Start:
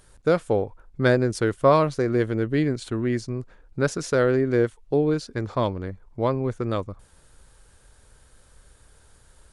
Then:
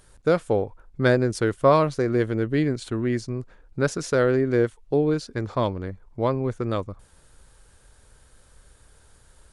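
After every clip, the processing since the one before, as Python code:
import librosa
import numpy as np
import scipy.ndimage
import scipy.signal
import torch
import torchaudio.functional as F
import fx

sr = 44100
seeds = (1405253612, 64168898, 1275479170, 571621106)

y = x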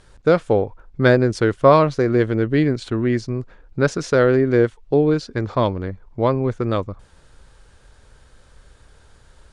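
y = scipy.signal.sosfilt(scipy.signal.butter(2, 5700.0, 'lowpass', fs=sr, output='sos'), x)
y = F.gain(torch.from_numpy(y), 5.0).numpy()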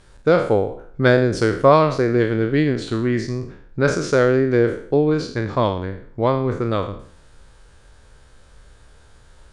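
y = fx.spec_trails(x, sr, decay_s=0.54)
y = F.gain(torch.from_numpy(y), -1.0).numpy()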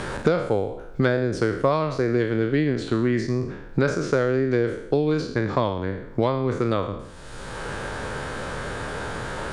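y = fx.band_squash(x, sr, depth_pct=100)
y = F.gain(torch.from_numpy(y), -4.5).numpy()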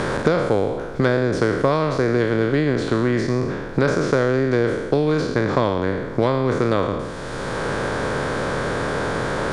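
y = fx.bin_compress(x, sr, power=0.6)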